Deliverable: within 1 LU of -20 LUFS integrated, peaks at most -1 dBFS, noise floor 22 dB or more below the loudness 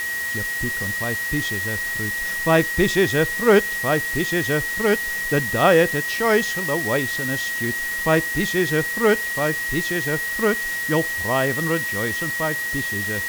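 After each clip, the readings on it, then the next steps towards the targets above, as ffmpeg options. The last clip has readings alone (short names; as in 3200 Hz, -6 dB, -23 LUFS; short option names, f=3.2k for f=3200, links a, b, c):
steady tone 1900 Hz; tone level -24 dBFS; noise floor -26 dBFS; noise floor target -43 dBFS; loudness -20.5 LUFS; peak -3.0 dBFS; loudness target -20.0 LUFS
-> -af "bandreject=f=1.9k:w=30"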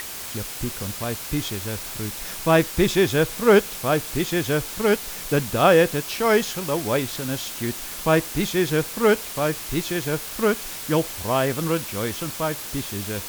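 steady tone none; noise floor -34 dBFS; noise floor target -45 dBFS
-> -af "afftdn=nr=11:nf=-34"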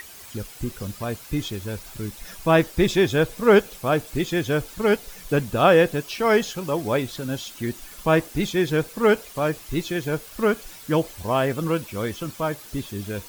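noise floor -43 dBFS; noise floor target -46 dBFS
-> -af "afftdn=nr=6:nf=-43"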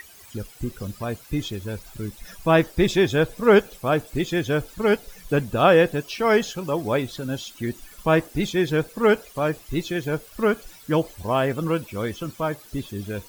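noise floor -48 dBFS; loudness -23.5 LUFS; peak -3.5 dBFS; loudness target -20.0 LUFS
-> -af "volume=3.5dB,alimiter=limit=-1dB:level=0:latency=1"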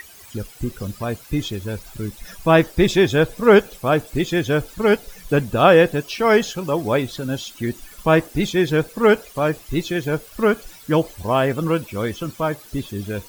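loudness -20.0 LUFS; peak -1.0 dBFS; noise floor -44 dBFS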